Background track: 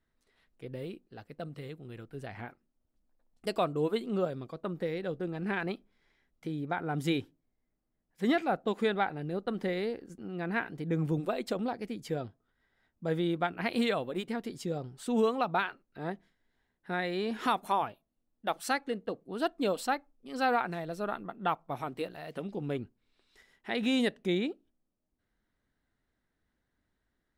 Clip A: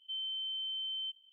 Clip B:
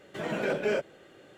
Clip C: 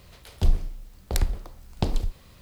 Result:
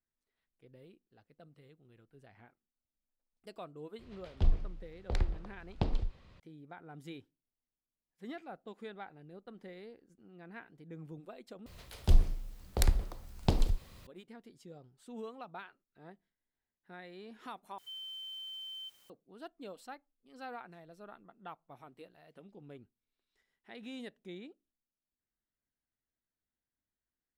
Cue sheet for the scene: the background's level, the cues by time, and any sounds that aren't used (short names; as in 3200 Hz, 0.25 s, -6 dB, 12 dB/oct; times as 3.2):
background track -17 dB
3.99 add C -7 dB + LPF 3500 Hz
11.66 replace with C -3 dB
17.78 replace with A -6.5 dB + requantised 10-bit, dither triangular
not used: B